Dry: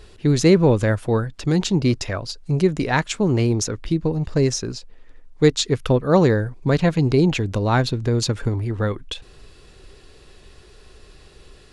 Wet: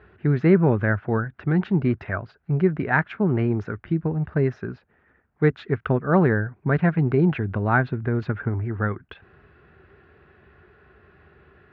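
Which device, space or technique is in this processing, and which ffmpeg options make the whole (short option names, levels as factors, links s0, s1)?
bass cabinet: -af "highpass=f=76:w=0.5412,highpass=f=76:w=1.3066,equalizer=f=120:t=q:w=4:g=-4,equalizer=f=290:t=q:w=4:g=-6,equalizer=f=510:t=q:w=4:g=-9,equalizer=f=990:t=q:w=4:g=-4,equalizer=f=1500:t=q:w=4:g=6,lowpass=f=2000:w=0.5412,lowpass=f=2000:w=1.3066"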